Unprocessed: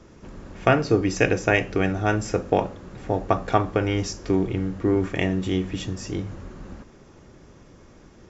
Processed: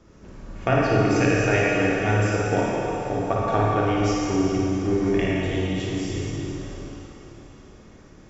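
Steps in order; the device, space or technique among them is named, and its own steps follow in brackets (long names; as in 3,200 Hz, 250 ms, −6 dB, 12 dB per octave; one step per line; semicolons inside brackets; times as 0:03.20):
tunnel (flutter between parallel walls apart 9.6 metres, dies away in 0.61 s; convolution reverb RT60 3.5 s, pre-delay 30 ms, DRR −3.5 dB)
level −5.5 dB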